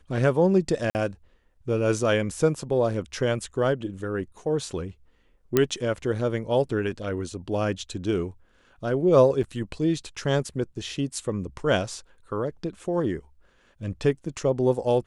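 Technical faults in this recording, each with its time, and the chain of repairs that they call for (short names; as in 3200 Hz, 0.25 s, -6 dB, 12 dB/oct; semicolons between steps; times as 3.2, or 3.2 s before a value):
0.9–0.95 gap 49 ms
5.57 pop -6 dBFS
9.43–9.44 gap 6.9 ms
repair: de-click; interpolate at 0.9, 49 ms; interpolate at 9.43, 6.9 ms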